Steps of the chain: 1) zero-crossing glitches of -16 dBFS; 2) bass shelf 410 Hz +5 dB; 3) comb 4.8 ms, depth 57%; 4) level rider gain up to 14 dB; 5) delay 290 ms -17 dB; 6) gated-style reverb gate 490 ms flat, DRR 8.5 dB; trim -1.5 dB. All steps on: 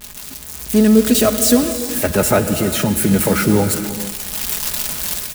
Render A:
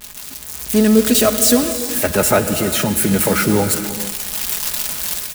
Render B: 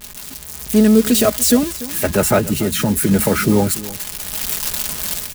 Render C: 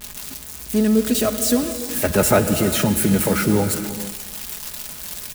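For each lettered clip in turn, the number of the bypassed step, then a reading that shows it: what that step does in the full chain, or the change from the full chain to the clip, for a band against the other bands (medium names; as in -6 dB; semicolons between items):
2, 125 Hz band -4.0 dB; 6, momentary loudness spread change +2 LU; 4, crest factor change +2.0 dB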